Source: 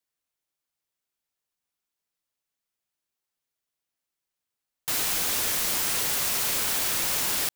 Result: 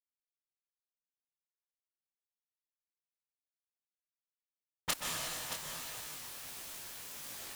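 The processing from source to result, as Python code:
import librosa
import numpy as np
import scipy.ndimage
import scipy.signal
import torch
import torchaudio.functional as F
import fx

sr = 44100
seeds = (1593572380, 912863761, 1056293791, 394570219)

p1 = fx.tape_stop_end(x, sr, length_s=0.37)
p2 = fx.high_shelf(p1, sr, hz=12000.0, db=2.5)
p3 = 10.0 ** (-16.5 / 20.0) * np.tanh(p2 / 10.0 ** (-16.5 / 20.0))
p4 = fx.env_lowpass(p3, sr, base_hz=330.0, full_db=-26.0)
p5 = fx.gate_flip(p4, sr, shuts_db=-22.0, range_db=-26)
p6 = fx.quant_dither(p5, sr, seeds[0], bits=8, dither='none')
p7 = p6 + fx.echo_single(p6, sr, ms=624, db=-8.5, dry=0)
p8 = fx.rev_plate(p7, sr, seeds[1], rt60_s=3.2, hf_ratio=1.0, predelay_ms=115, drr_db=-1.5)
p9 = fx.detune_double(p8, sr, cents=52)
y = p9 * 10.0 ** (8.0 / 20.0)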